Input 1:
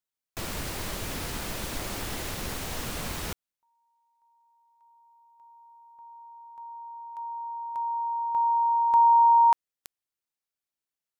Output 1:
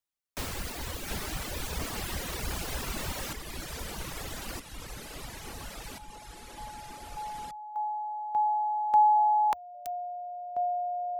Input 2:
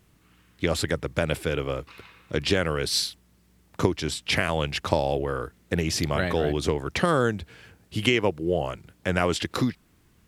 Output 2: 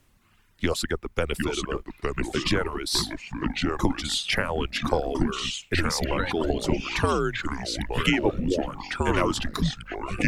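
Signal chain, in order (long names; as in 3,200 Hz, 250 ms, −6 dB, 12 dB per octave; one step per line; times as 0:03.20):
frequency shifter −85 Hz
delay with pitch and tempo change per echo 637 ms, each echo −3 semitones, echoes 3
reverb reduction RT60 1.7 s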